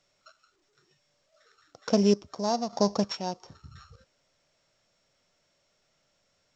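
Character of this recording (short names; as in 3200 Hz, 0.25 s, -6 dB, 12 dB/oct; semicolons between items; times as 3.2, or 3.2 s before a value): a buzz of ramps at a fixed pitch in blocks of 8 samples; chopped level 1.1 Hz, depth 60%, duty 35%; A-law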